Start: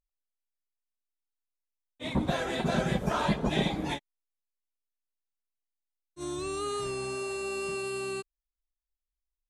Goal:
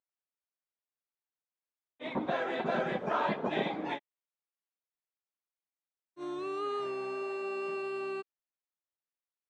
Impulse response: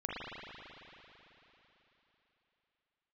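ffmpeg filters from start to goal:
-af "highpass=320,lowpass=2300"

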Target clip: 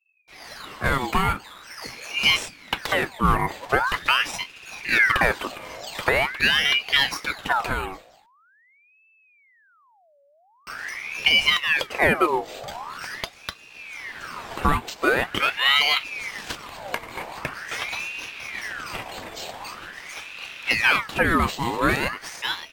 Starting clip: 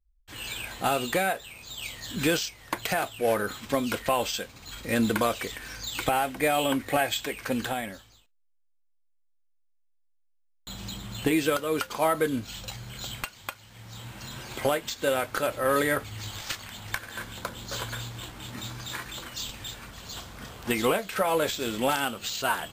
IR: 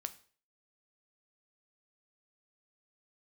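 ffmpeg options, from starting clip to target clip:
-af "dynaudnorm=framelen=160:gausssize=9:maxgain=8dB,highshelf=frequency=2500:gain=-10.5,aeval=exprs='val(0)*sin(2*PI*1600*n/s+1600*0.65/0.44*sin(2*PI*0.44*n/s))':channel_layout=same,volume=1.5dB"

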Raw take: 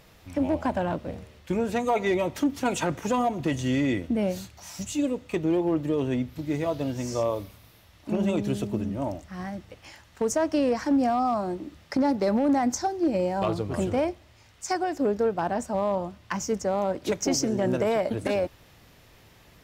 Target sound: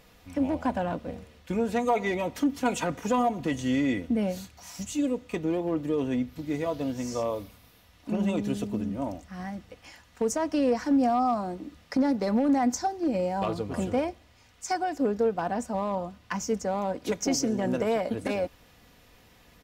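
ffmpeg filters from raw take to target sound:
ffmpeg -i in.wav -af "aecho=1:1:4.1:0.39,volume=-2.5dB" out.wav

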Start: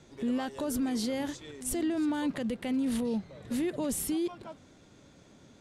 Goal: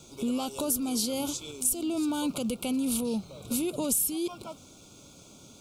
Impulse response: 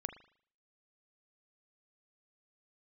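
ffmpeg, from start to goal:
-af "aemphasis=mode=production:type=75fm,acompressor=threshold=-29dB:ratio=4,asuperstop=centerf=1800:order=12:qfactor=2.4,volume=3.5dB"

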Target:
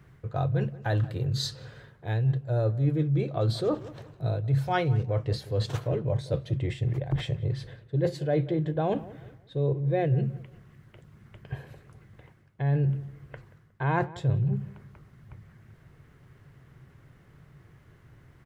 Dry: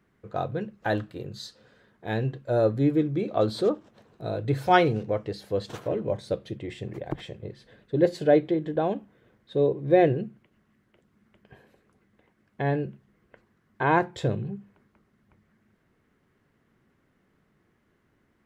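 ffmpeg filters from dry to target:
ffmpeg -i in.wav -filter_complex "[0:a]lowshelf=frequency=170:width_type=q:width=3:gain=7,areverse,acompressor=threshold=-35dB:ratio=4,areverse,asplit=2[link_01][link_02];[link_02]adelay=181,lowpass=frequency=1600:poles=1,volume=-18dB,asplit=2[link_03][link_04];[link_04]adelay=181,lowpass=frequency=1600:poles=1,volume=0.35,asplit=2[link_05][link_06];[link_06]adelay=181,lowpass=frequency=1600:poles=1,volume=0.35[link_07];[link_01][link_03][link_05][link_07]amix=inputs=4:normalize=0,volume=9dB" out.wav

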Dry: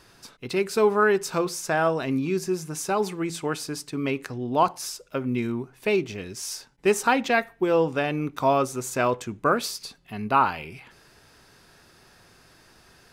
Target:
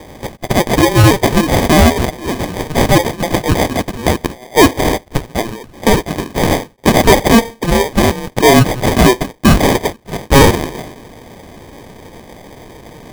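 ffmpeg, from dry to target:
ffmpeg -i in.wav -af "highpass=frequency=940:width=0.5412,highpass=frequency=940:width=1.3066,acrusher=samples=32:mix=1:aa=0.000001,apsyclip=23.5dB,volume=-1.5dB" out.wav

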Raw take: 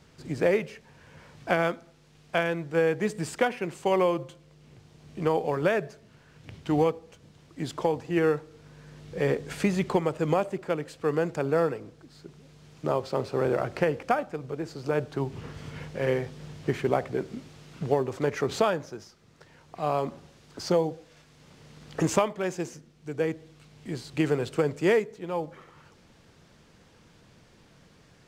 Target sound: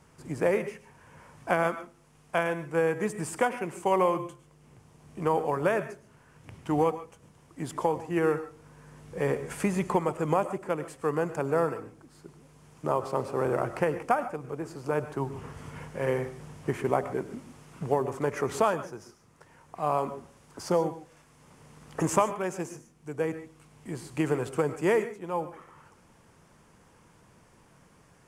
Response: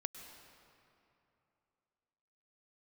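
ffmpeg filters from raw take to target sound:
-filter_complex "[0:a]equalizer=frequency=1000:width_type=o:width=0.67:gain=7,equalizer=frequency=4000:width_type=o:width=0.67:gain=-9,equalizer=frequency=10000:width_type=o:width=0.67:gain=10[link_01];[1:a]atrim=start_sample=2205,afade=type=out:start_time=0.2:duration=0.01,atrim=end_sample=9261[link_02];[link_01][link_02]afir=irnorm=-1:irlink=0"

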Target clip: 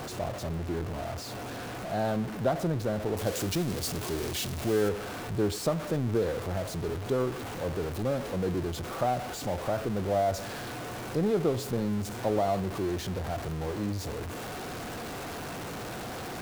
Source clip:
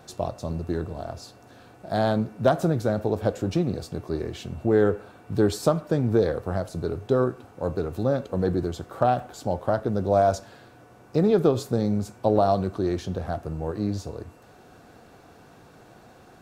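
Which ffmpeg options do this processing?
ffmpeg -i in.wav -af "aeval=exprs='val(0)+0.5*0.0668*sgn(val(0))':channel_layout=same,asetnsamples=nb_out_samples=441:pad=0,asendcmd='3.17 highshelf g 7.5;4.89 highshelf g -2.5',highshelf=frequency=3300:gain=-5.5,volume=-8.5dB" out.wav

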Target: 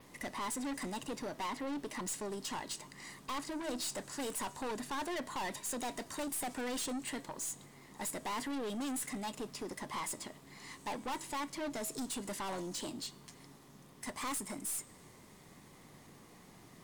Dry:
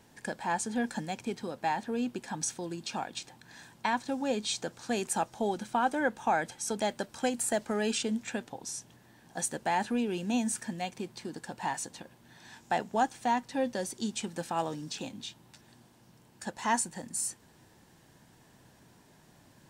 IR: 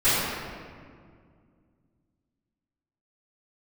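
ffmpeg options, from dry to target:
-af "aeval=exprs='if(lt(val(0),0),0.708*val(0),val(0))':channel_layout=same,adynamicequalizer=threshold=0.00251:dfrequency=6800:dqfactor=2.5:tfrequency=6800:tqfactor=2.5:attack=5:release=100:ratio=0.375:range=3:mode=boostabove:tftype=bell,asetrate=51597,aresample=44100,aeval=exprs='(tanh(100*val(0)+0.2)-tanh(0.2))/100':channel_layout=same,bandreject=frequency=322.9:width_type=h:width=4,bandreject=frequency=645.8:width_type=h:width=4,bandreject=frequency=968.7:width_type=h:width=4,bandreject=frequency=1291.6:width_type=h:width=4,bandreject=frequency=1614.5:width_type=h:width=4,bandreject=frequency=1937.4:width_type=h:width=4,bandreject=frequency=2260.3:width_type=h:width=4,bandreject=frequency=2583.2:width_type=h:width=4,bandreject=frequency=2906.1:width_type=h:width=4,bandreject=frequency=3229:width_type=h:width=4,bandreject=frequency=3551.9:width_type=h:width=4,bandreject=frequency=3874.8:width_type=h:width=4,bandreject=frequency=4197.7:width_type=h:width=4,bandreject=frequency=4520.6:width_type=h:width=4,bandreject=frequency=4843.5:width_type=h:width=4,bandreject=frequency=5166.4:width_type=h:width=4,bandreject=frequency=5489.3:width_type=h:width=4,bandreject=frequency=5812.2:width_type=h:width=4,bandreject=frequency=6135.1:width_type=h:width=4,bandreject=frequency=6458:width_type=h:width=4,bandreject=frequency=6780.9:width_type=h:width=4,bandreject=frequency=7103.8:width_type=h:width=4,bandreject=frequency=7426.7:width_type=h:width=4,bandreject=frequency=7749.6:width_type=h:width=4,bandreject=frequency=8072.5:width_type=h:width=4,bandreject=frequency=8395.4:width_type=h:width=4,bandreject=frequency=8718.3:width_type=h:width=4,bandreject=frequency=9041.2:width_type=h:width=4,volume=4dB"

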